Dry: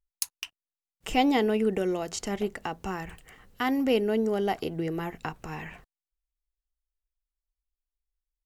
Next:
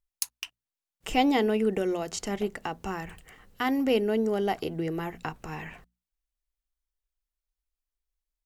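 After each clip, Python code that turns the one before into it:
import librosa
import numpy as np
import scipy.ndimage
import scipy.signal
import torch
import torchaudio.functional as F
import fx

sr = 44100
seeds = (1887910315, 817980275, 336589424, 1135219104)

y = fx.hum_notches(x, sr, base_hz=60, count=4)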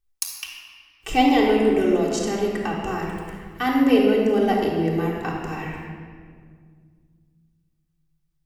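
y = fx.room_shoebox(x, sr, seeds[0], volume_m3=3200.0, walls='mixed', distance_m=3.6)
y = F.gain(torch.from_numpy(y), 1.0).numpy()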